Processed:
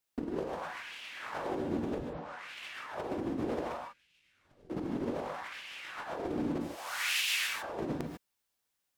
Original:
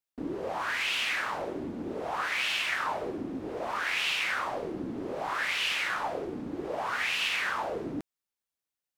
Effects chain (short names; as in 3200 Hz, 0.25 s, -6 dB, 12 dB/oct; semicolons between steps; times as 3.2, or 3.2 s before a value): 6.6–7.48 pre-emphasis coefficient 0.97; negative-ratio compressor -38 dBFS, ratio -0.5; 1.98 tape start 0.58 s; 3.77–4.7 passive tone stack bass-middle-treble 10-0-1; non-linear reverb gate 0.17 s rising, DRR 2 dB